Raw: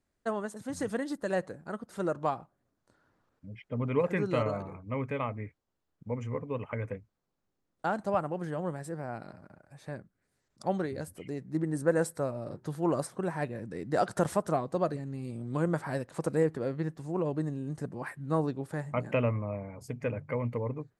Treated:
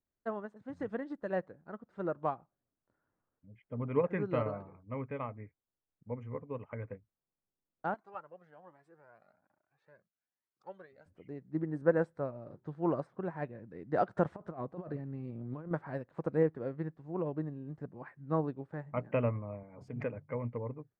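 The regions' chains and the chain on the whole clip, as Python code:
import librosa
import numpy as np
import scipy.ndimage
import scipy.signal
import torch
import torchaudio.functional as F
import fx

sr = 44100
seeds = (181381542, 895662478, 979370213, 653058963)

y = fx.chain(x, sr, fx.highpass(hz=660.0, slope=6),
    fx.high_shelf(hz=3500.0, db=5.0),
    fx.comb_cascade(direction='rising', hz=1.2), at=(7.94, 11.06))
y = fx.chain(y, sr, fx.lowpass(hz=3900.0, slope=6),
    fx.over_compress(threshold_db=-34.0, ratio=-1.0), at=(14.36, 15.71))
y = fx.chain(y, sr, fx.highpass(hz=130.0, slope=12),
    fx.pre_swell(db_per_s=45.0), at=(19.63, 20.15))
y = scipy.signal.sosfilt(scipy.signal.butter(2, 2000.0, 'lowpass', fs=sr, output='sos'), y)
y = fx.upward_expand(y, sr, threshold_db=-45.0, expansion=1.5)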